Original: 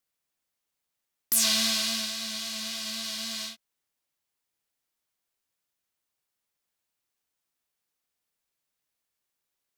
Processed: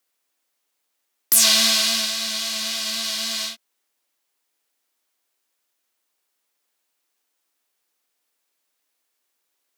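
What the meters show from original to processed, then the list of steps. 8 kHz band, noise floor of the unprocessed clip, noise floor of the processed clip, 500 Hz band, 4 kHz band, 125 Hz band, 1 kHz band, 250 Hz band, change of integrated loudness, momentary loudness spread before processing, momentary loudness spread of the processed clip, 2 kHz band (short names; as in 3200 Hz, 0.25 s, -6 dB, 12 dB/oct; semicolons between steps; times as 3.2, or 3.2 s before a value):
+8.5 dB, -84 dBFS, -76 dBFS, +8.5 dB, +8.5 dB, n/a, +8.5 dB, +3.0 dB, +8.5 dB, 11 LU, 11 LU, +8.5 dB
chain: HPF 250 Hz 24 dB/oct; gain +8.5 dB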